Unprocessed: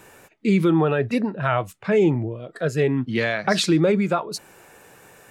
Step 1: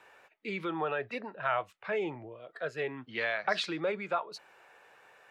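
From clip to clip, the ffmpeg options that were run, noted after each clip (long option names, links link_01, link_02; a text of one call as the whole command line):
ffmpeg -i in.wav -filter_complex "[0:a]acrossover=split=510 4300:gain=0.126 1 0.112[link_01][link_02][link_03];[link_01][link_02][link_03]amix=inputs=3:normalize=0,volume=-6.5dB" out.wav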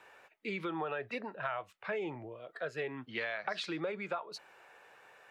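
ffmpeg -i in.wav -af "acompressor=threshold=-33dB:ratio=6" out.wav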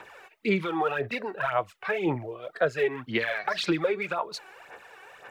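ffmpeg -i in.wav -filter_complex "[0:a]asplit=2[link_01][link_02];[link_02]alimiter=level_in=5dB:limit=-24dB:level=0:latency=1:release=31,volume=-5dB,volume=0dB[link_03];[link_01][link_03]amix=inputs=2:normalize=0,aphaser=in_gain=1:out_gain=1:delay=2.7:decay=0.63:speed=1.9:type=sinusoidal,volume=1.5dB" out.wav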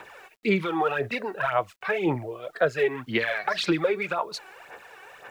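ffmpeg -i in.wav -af "acrusher=bits=10:mix=0:aa=0.000001,volume=2dB" out.wav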